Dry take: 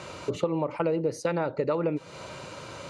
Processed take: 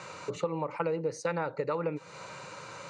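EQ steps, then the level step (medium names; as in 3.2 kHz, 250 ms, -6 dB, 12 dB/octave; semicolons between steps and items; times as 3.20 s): cabinet simulation 170–8300 Hz, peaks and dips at 360 Hz -9 dB, 640 Hz -8 dB, 3.2 kHz -9 dB, 5 kHz -4 dB; peaking EQ 250 Hz -12.5 dB 0.35 oct; 0.0 dB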